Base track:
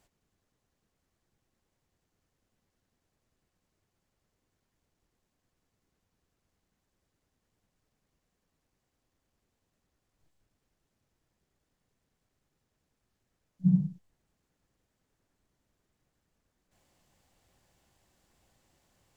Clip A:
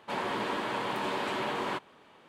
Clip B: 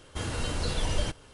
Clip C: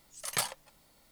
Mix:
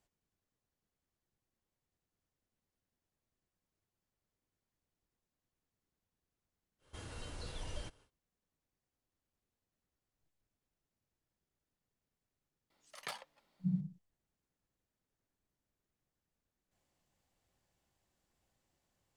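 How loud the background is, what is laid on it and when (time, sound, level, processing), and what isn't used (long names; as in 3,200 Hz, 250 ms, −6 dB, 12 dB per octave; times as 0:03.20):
base track −11 dB
0:06.78: mix in B −15.5 dB, fades 0.10 s + parametric band 200 Hz −2.5 dB
0:12.70: mix in C −9.5 dB + three-way crossover with the lows and the highs turned down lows −17 dB, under 180 Hz, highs −14 dB, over 4,800 Hz
not used: A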